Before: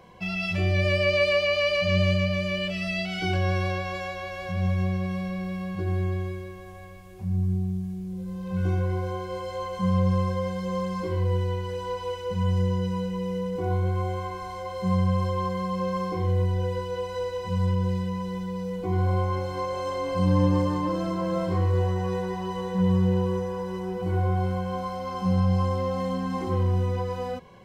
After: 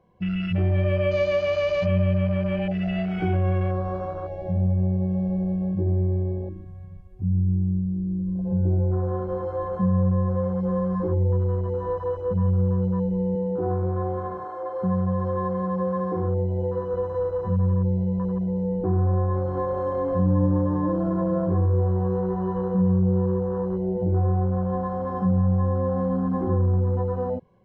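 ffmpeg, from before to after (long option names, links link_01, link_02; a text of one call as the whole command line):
ffmpeg -i in.wav -filter_complex "[0:a]asettb=1/sr,asplit=3[link_01][link_02][link_03];[link_01]atrim=end=13.354[link_04];[link_02]atrim=start=13.35:end=16.94,asetpts=PTS-STARTPTS,afade=type=in:duration=0.004:curve=qsin,afade=type=out:start_time=3.586:duration=0.004:curve=qsin,highpass=frequency=200:poles=1[link_05];[link_03]atrim=start=16.936[link_06];[link_04][link_05]acrossfade=duration=0.004:curve1=hsin:curve2=qsin[link_07];[link_07][link_06]acrossfade=duration=0.004:curve1=qsin:curve2=hsin,afwtdn=0.0282,tiltshelf=frequency=1300:gain=8,acompressor=threshold=-22dB:ratio=2" out.wav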